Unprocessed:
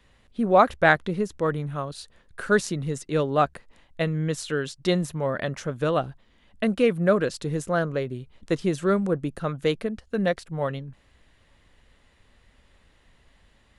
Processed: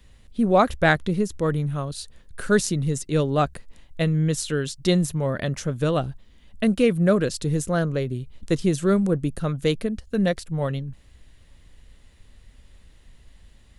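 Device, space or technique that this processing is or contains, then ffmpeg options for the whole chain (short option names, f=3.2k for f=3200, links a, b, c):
smiley-face EQ: -af "lowshelf=f=95:g=8,equalizer=f=1.1k:t=o:w=2.8:g=-6.5,highshelf=f=5.9k:g=5.5,volume=4dB"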